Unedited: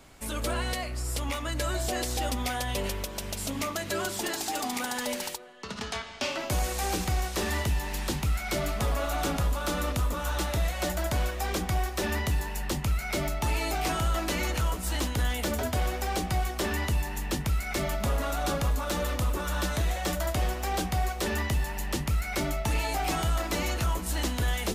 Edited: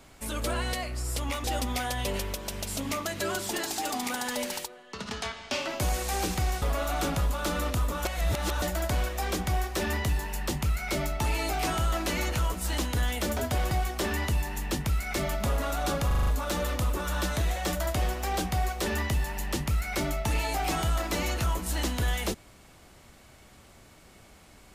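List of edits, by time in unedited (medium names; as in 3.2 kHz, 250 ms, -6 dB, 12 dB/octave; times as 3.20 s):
1.44–2.14 s: delete
7.32–8.84 s: delete
10.27–10.84 s: reverse
15.93–16.31 s: delete
18.67 s: stutter 0.04 s, 6 plays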